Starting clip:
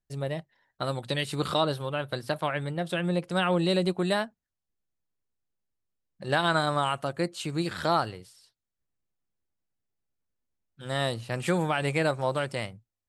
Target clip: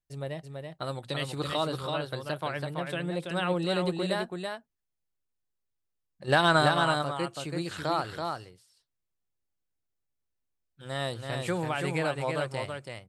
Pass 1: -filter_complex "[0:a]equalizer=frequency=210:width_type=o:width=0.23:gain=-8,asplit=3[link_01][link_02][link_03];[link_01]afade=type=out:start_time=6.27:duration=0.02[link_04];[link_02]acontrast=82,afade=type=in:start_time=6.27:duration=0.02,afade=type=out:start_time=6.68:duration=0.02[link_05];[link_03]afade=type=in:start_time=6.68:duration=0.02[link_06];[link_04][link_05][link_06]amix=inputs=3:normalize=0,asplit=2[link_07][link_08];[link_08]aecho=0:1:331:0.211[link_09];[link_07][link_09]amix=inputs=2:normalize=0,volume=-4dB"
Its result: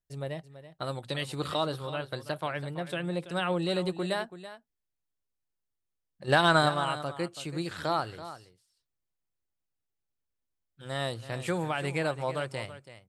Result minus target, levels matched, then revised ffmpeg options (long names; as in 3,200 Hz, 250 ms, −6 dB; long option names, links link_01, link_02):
echo-to-direct −9 dB
-filter_complex "[0:a]equalizer=frequency=210:width_type=o:width=0.23:gain=-8,asplit=3[link_01][link_02][link_03];[link_01]afade=type=out:start_time=6.27:duration=0.02[link_04];[link_02]acontrast=82,afade=type=in:start_time=6.27:duration=0.02,afade=type=out:start_time=6.68:duration=0.02[link_05];[link_03]afade=type=in:start_time=6.68:duration=0.02[link_06];[link_04][link_05][link_06]amix=inputs=3:normalize=0,asplit=2[link_07][link_08];[link_08]aecho=0:1:331:0.596[link_09];[link_07][link_09]amix=inputs=2:normalize=0,volume=-4dB"